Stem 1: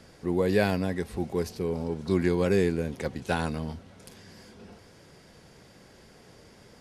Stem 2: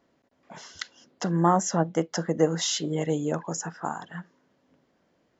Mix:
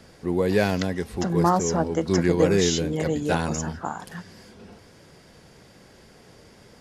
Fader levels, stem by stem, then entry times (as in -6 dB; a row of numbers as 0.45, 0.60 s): +2.5, +0.5 dB; 0.00, 0.00 s